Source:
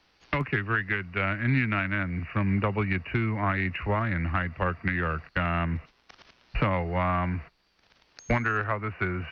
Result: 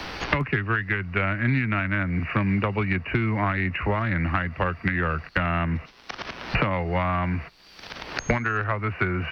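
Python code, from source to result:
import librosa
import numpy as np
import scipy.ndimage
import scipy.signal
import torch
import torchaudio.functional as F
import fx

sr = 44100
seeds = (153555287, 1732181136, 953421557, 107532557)

y = fx.band_squash(x, sr, depth_pct=100)
y = y * librosa.db_to_amplitude(2.0)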